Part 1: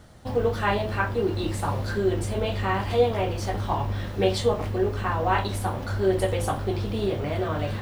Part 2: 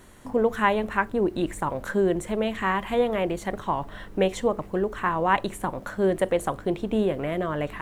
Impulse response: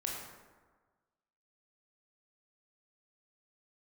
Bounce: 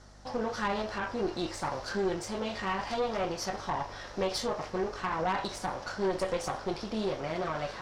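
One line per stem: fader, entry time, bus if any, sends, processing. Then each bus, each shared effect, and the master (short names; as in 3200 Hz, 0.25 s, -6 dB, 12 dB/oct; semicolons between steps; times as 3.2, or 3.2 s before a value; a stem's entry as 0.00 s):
+2.5 dB, 0.00 s, no send, HPF 660 Hz 12 dB/oct; limiter -22.5 dBFS, peak gain reduction 10.5 dB; hum 50 Hz, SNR 20 dB
-6.5 dB, 0.00 s, no send, dry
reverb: off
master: synth low-pass 5400 Hz, resonance Q 3.2; bell 3300 Hz -8.5 dB 1.5 oct; tube stage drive 23 dB, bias 0.65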